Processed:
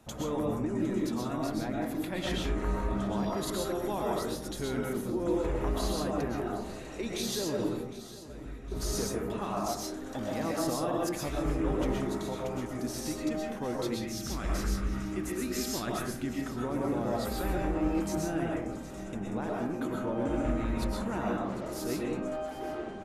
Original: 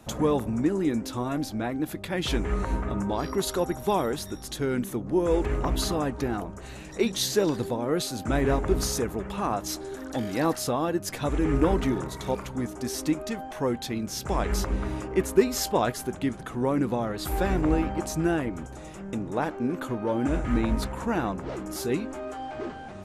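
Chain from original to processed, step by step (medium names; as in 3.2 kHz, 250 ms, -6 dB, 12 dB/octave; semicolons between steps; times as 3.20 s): 7.70–8.72 s: amplifier tone stack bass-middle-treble 6-0-2; 13.82–16.25 s: time-frequency box 370–1100 Hz -9 dB; peak limiter -19 dBFS, peak gain reduction 9 dB; feedback delay 759 ms, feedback 51%, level -16.5 dB; reverberation RT60 0.70 s, pre-delay 85 ms, DRR -2.5 dB; trim -7.5 dB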